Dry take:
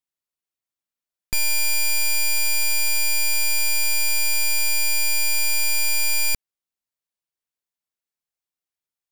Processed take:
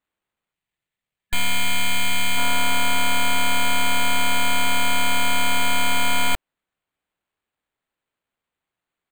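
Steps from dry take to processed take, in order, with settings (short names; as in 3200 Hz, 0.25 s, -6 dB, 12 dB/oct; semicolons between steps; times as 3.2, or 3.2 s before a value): comb 3 ms, depth 89%; in parallel at -0.5 dB: soft clip -24.5 dBFS, distortion -22 dB; on the sum: careless resampling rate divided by 8×, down none, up hold; spectral gain 0.52–2.37, 200–1700 Hz -6 dB; gain -4 dB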